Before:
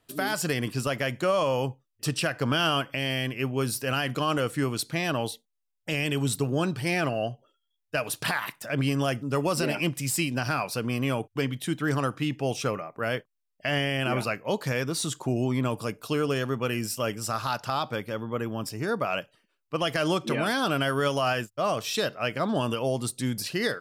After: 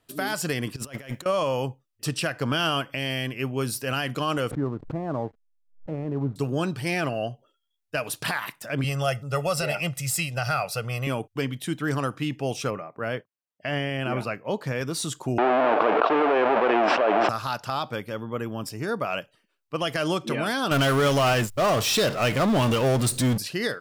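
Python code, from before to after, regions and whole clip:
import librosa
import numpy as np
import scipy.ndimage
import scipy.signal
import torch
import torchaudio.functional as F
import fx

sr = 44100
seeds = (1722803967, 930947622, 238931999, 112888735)

y = fx.chain(x, sr, fx.law_mismatch(coded='A'),
    fx.notch(hz=4500.0, q=18.0),
    fx.over_compress(threshold_db=-35.0, ratio=-0.5), at=(0.76, 1.26))
y = fx.chain(y, sr, fx.lowpass(hz=1100.0, slope=24),
    fx.backlash(play_db=-45.0),
    fx.pre_swell(db_per_s=140.0), at=(4.51, 6.36))
y = fx.chain(y, sr, fx.peak_eq(hz=250.0, db=-14.5, octaves=0.4),
    fx.comb(ms=1.5, depth=0.65), at=(8.84, 11.07))
y = fx.chain(y, sr, fx.highpass(hz=49.0, slope=12),
    fx.high_shelf(hz=3500.0, db=-10.0), at=(12.7, 14.81))
y = fx.chain(y, sr, fx.halfwave_hold(),
    fx.cabinet(low_hz=350.0, low_slope=24, high_hz=2300.0, hz=(460.0, 700.0, 2000.0), db=(-3, 8, -6)),
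    fx.env_flatten(amount_pct=100), at=(15.38, 17.29))
y = fx.chain(y, sr, fx.low_shelf(hz=78.0, db=11.0),
    fx.notch(hz=1600.0, q=16.0),
    fx.power_curve(exponent=0.5), at=(20.71, 23.38))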